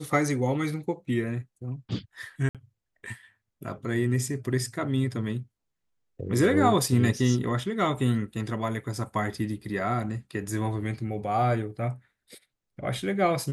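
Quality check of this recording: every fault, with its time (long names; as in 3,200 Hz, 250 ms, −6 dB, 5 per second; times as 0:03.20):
0:02.49–0:02.55: drop-out 57 ms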